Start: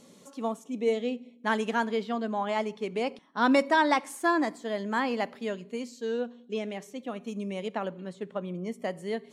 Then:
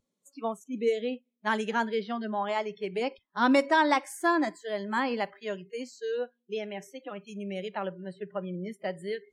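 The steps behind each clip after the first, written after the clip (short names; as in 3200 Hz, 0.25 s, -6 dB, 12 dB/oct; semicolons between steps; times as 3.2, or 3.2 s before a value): spectral noise reduction 29 dB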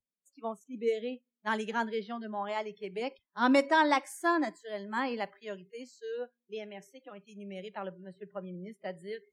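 three-band expander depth 40%; gain -4.5 dB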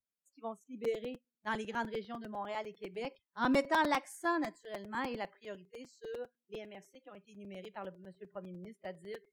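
crackling interface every 0.10 s, samples 256, repeat, from 0.84; gain -5 dB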